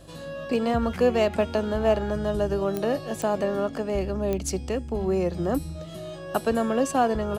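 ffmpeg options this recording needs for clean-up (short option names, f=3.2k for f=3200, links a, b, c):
-af "adeclick=t=4,bandreject=f=49.9:t=h:w=4,bandreject=f=99.8:t=h:w=4,bandreject=f=149.7:t=h:w=4"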